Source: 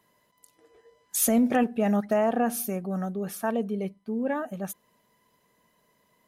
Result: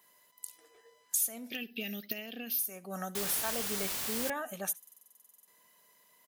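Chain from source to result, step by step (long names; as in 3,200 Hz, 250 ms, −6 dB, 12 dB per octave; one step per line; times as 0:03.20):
spectral tilt +4.5 dB per octave
downward compressor 4 to 1, threshold −33 dBFS, peak gain reduction 22.5 dB
0:01.50–0:02.59: drawn EQ curve 360 Hz 0 dB, 1,000 Hz −26 dB, 2,800 Hz +7 dB, 5,000 Hz +5 dB, 8,800 Hz −27 dB, 14,000 Hz +9 dB
on a send: single-tap delay 71 ms −21 dB
0:03.15–0:04.30: on the sum: bit-depth reduction 6 bits, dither triangular
buffer that repeats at 0:04.78, samples 2,048, times 14
one half of a high-frequency compander decoder only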